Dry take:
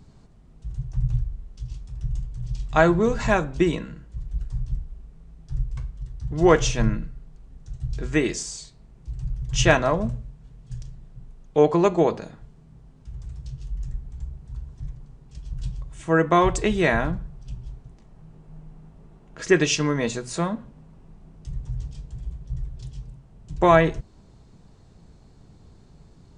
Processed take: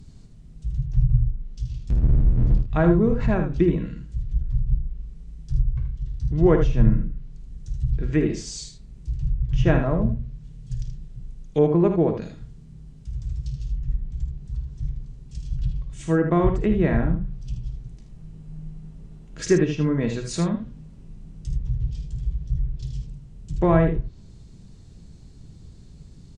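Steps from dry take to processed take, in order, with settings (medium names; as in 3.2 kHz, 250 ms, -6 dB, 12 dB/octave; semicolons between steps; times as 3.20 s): 1.90–2.58 s: power-law waveshaper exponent 0.35; peaking EQ 890 Hz -13.5 dB 2.5 oct; low-pass that closes with the level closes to 1.2 kHz, closed at -23 dBFS; on a send: early reflections 52 ms -11.5 dB, 78 ms -8 dB; on the sum: trim +6 dB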